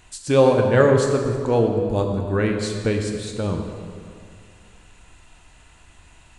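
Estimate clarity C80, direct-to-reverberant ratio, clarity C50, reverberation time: 5.5 dB, 2.5 dB, 4.5 dB, 2.3 s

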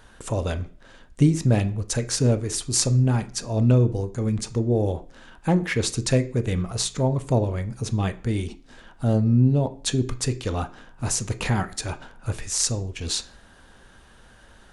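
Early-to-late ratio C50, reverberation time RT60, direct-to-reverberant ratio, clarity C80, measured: 16.5 dB, 0.45 s, 9.5 dB, 20.5 dB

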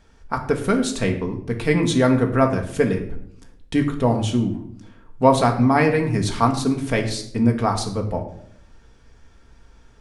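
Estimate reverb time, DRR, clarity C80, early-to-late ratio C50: 0.65 s, 2.0 dB, 13.0 dB, 9.5 dB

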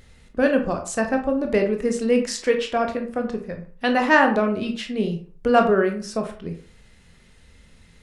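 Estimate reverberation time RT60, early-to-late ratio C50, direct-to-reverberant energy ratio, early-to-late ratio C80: 0.40 s, 8.5 dB, 3.5 dB, 13.5 dB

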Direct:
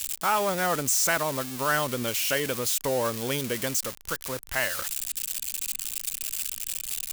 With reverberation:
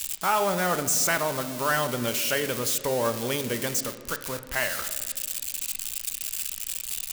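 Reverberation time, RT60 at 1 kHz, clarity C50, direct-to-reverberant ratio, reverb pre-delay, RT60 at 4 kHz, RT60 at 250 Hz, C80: 1.8 s, 1.5 s, 11.0 dB, 8.0 dB, 5 ms, 1.1 s, 2.9 s, 13.0 dB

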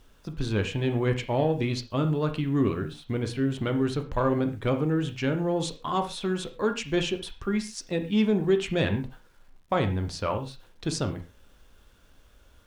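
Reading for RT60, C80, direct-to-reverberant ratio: non-exponential decay, 16.5 dB, 6.5 dB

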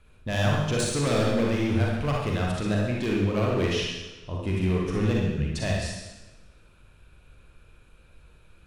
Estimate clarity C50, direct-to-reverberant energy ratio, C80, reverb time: −1.0 dB, −3.0 dB, 4.0 dB, 1.1 s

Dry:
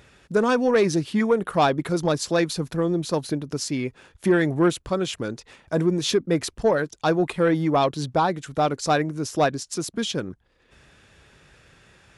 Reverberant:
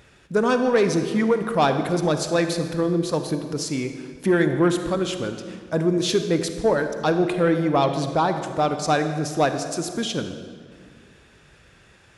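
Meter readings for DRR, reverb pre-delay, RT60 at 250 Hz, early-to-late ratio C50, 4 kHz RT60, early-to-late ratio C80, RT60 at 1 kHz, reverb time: 7.5 dB, 35 ms, 2.3 s, 8.0 dB, 1.4 s, 9.0 dB, 1.9 s, 2.0 s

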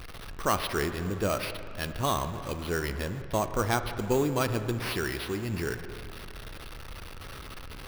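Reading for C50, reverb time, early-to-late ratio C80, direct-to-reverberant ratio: 10.0 dB, 2.5 s, 10.5 dB, 9.0 dB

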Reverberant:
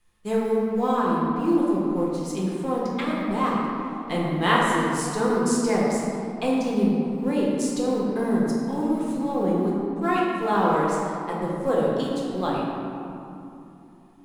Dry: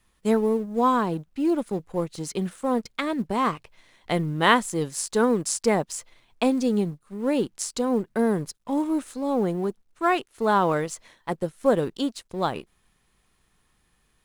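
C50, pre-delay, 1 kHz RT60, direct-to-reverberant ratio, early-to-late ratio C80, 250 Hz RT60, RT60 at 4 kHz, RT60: −1.5 dB, 3 ms, 2.9 s, −5.5 dB, 0.0 dB, 4.2 s, 1.4 s, 3.0 s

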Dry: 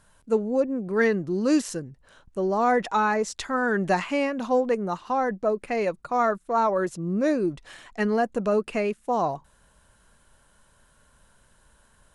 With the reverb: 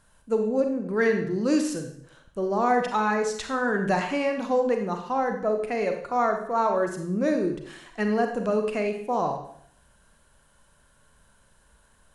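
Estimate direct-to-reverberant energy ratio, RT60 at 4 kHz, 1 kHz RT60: 4.5 dB, 0.60 s, 0.60 s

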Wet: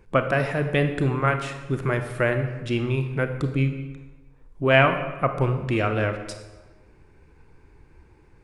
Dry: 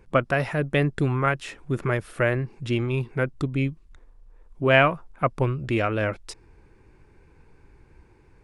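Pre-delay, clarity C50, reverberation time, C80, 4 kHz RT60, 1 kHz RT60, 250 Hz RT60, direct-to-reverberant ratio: 28 ms, 8.5 dB, 1.2 s, 10.5 dB, 0.90 s, 1.2 s, 1.2 s, 7.0 dB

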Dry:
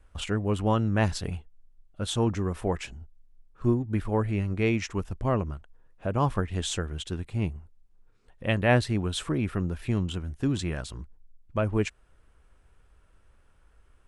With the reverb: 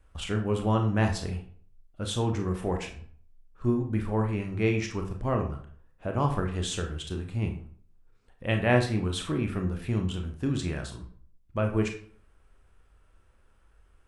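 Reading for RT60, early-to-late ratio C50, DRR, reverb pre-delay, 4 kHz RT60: 0.55 s, 9.0 dB, 3.0 dB, 24 ms, 0.35 s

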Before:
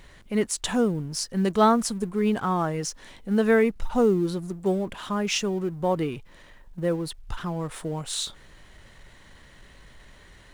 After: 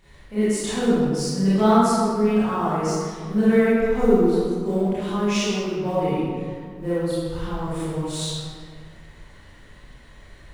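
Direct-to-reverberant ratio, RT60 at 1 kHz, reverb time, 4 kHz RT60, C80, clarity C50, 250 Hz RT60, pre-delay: −12.0 dB, 1.9 s, 2.0 s, 1.1 s, −1.5 dB, −5.5 dB, 2.3 s, 22 ms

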